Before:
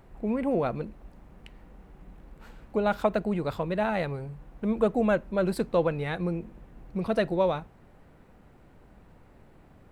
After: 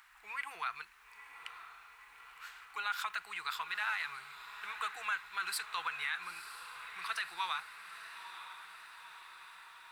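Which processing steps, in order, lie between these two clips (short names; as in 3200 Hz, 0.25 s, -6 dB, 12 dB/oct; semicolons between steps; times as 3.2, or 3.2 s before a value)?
inverse Chebyshev high-pass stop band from 620 Hz, stop band 40 dB; limiter -32.5 dBFS, peak gain reduction 11.5 dB; on a send: diffused feedback echo 0.943 s, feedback 64%, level -11 dB; on the sum: gain +7 dB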